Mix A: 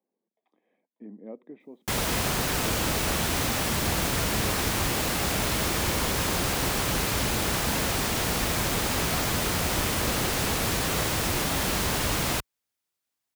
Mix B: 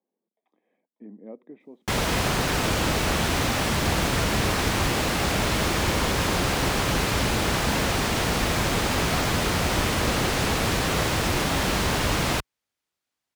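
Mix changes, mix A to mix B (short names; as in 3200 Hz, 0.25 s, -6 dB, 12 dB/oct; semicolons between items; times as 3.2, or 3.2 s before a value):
background +4.0 dB; master: add high shelf 8400 Hz -12 dB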